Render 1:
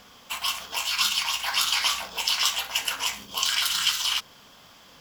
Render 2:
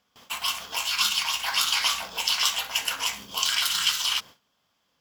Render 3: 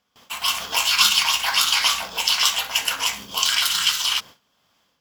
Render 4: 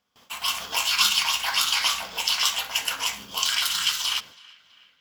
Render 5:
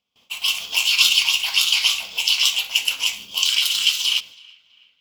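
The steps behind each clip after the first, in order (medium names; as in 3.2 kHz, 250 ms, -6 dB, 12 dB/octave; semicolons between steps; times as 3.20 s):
high-pass 48 Hz 12 dB/octave; gate with hold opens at -40 dBFS
level rider gain up to 11.5 dB; trim -1 dB
band-passed feedback delay 327 ms, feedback 59%, band-pass 2 kHz, level -22 dB; trim -4 dB
resonant high shelf 2.1 kHz +7.5 dB, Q 3; tape noise reduction on one side only decoder only; trim -5.5 dB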